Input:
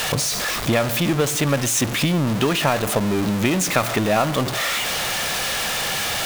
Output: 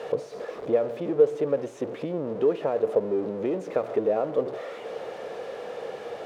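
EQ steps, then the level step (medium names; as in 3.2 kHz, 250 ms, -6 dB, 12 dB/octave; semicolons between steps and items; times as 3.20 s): band-pass filter 460 Hz, Q 5.4; +5.0 dB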